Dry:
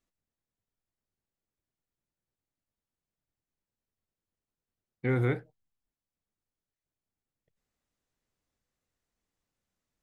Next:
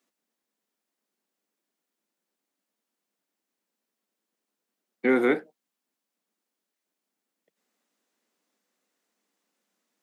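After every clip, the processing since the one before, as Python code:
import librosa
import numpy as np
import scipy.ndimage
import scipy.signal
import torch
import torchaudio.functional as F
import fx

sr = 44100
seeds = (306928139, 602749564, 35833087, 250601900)

y = scipy.signal.sosfilt(scipy.signal.butter(8, 200.0, 'highpass', fs=sr, output='sos'), x)
y = y * librosa.db_to_amplitude(8.5)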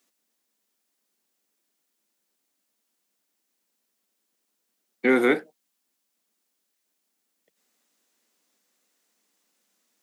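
y = fx.high_shelf(x, sr, hz=2900.0, db=8.5)
y = y * librosa.db_to_amplitude(1.5)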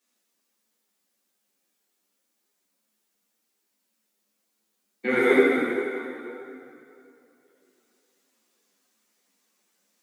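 y = x + 10.0 ** (-3.5 / 20.0) * np.pad(x, (int(84 * sr / 1000.0), 0))[:len(x)]
y = fx.rev_plate(y, sr, seeds[0], rt60_s=2.9, hf_ratio=0.75, predelay_ms=0, drr_db=-5.0)
y = fx.ensemble(y, sr)
y = y * librosa.db_to_amplitude(-2.5)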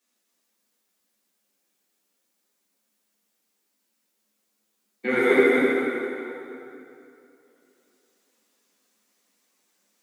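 y = x + 10.0 ** (-4.5 / 20.0) * np.pad(x, (int(253 * sr / 1000.0), 0))[:len(x)]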